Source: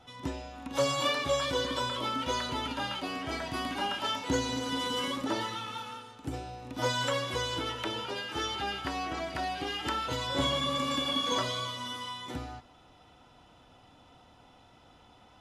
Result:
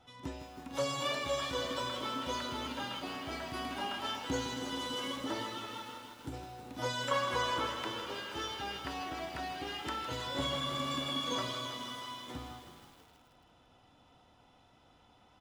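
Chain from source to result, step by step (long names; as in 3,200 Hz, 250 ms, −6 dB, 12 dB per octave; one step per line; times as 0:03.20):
0:07.11–0:07.67: parametric band 1,100 Hz +10.5 dB 1.7 octaves
echo with shifted repeats 325 ms, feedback 36%, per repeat +90 Hz, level −15.5 dB
feedback echo at a low word length 159 ms, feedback 80%, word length 8 bits, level −10.5 dB
level −6 dB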